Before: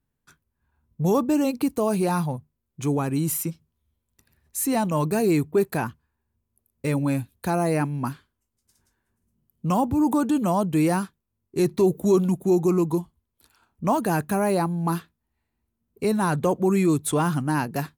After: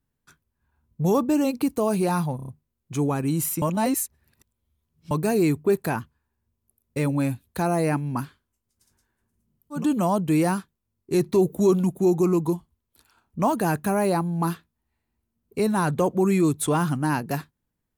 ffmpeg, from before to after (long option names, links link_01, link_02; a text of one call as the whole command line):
ffmpeg -i in.wav -filter_complex "[0:a]asplit=8[link_01][link_02][link_03][link_04][link_05][link_06][link_07][link_08];[link_01]atrim=end=2.392[link_09];[link_02]atrim=start=2.358:end=2.392[link_10];[link_03]atrim=start=2.358:end=2.392[link_11];[link_04]atrim=start=2.358:end=2.392[link_12];[link_05]atrim=start=2.358:end=3.502[link_13];[link_06]atrim=start=3.498:end=4.992,asetpts=PTS-STARTPTS,areverse[link_14];[link_07]atrim=start=4.988:end=9.74[link_15];[link_08]atrim=start=10.15[link_16];[link_09][link_10]acrossfade=duration=0.004:curve1=hsin:curve2=hsin[link_17];[link_17][link_11]acrossfade=duration=0.004:curve1=hsin:curve2=hsin[link_18];[link_18][link_12]acrossfade=duration=0.004:curve1=hsin:curve2=hsin[link_19];[link_19][link_13]acrossfade=duration=0.004:curve1=hsin:curve2=hsin[link_20];[link_20][link_14]acrossfade=duration=0.004:curve1=hsin:curve2=hsin[link_21];[link_21][link_15]acrossfade=duration=0.004:curve1=hsin:curve2=hsin[link_22];[link_22][link_16]acrossfade=duration=0.16:curve1=tri:curve2=tri" out.wav